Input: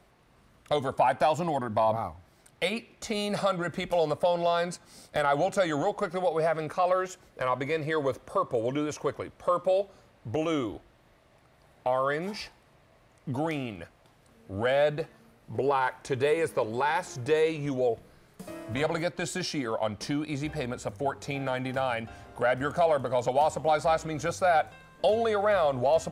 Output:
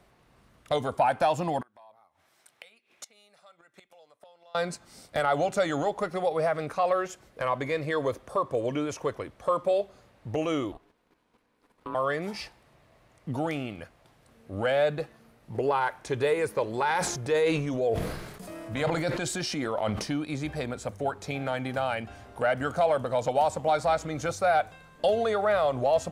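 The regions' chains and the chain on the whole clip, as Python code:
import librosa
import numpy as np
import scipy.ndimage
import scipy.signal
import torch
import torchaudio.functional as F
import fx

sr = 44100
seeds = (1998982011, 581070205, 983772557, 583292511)

y = fx.chain(x, sr, fx.highpass(hz=1200.0, slope=6),
    fx.notch(hz=4600.0, q=15.0),
    fx.gate_flip(shuts_db=-28.0, range_db=-24), at=(1.61, 4.55))
y = fx.chain(y, sr, fx.ring_mod(carrier_hz=360.0),
    fx.level_steps(step_db=9), at=(10.72, 11.95))
y = fx.chain(y, sr, fx.transient(attack_db=-2, sustain_db=7),
    fx.sustainer(db_per_s=47.0), at=(16.81, 20.03))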